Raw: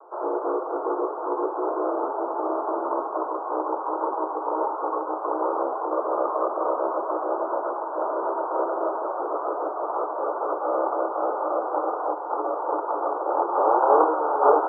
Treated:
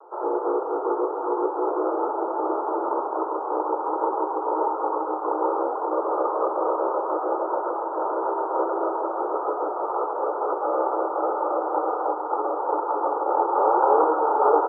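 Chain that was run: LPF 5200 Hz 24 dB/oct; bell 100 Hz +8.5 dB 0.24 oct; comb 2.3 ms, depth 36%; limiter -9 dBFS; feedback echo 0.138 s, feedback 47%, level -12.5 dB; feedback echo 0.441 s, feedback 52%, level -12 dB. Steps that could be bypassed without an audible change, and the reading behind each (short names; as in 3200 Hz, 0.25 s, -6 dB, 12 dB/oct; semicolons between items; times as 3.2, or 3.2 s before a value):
LPF 5200 Hz: input band ends at 1500 Hz; bell 100 Hz: input band starts at 250 Hz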